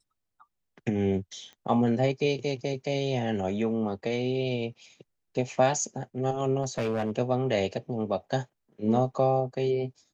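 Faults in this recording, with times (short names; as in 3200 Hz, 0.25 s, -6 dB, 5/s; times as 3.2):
1.53 pop -34 dBFS
6.62–7.11 clipped -24 dBFS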